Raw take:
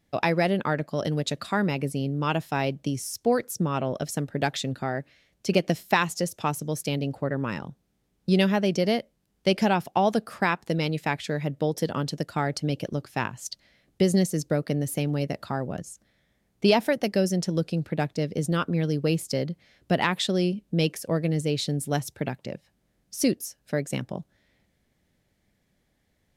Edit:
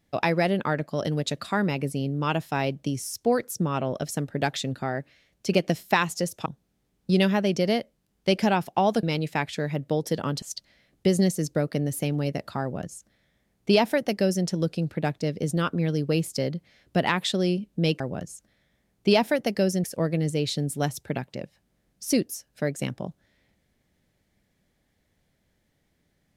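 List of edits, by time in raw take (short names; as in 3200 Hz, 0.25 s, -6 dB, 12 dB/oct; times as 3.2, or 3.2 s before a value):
6.46–7.65 cut
10.22–10.74 cut
12.13–13.37 cut
15.57–17.41 copy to 20.95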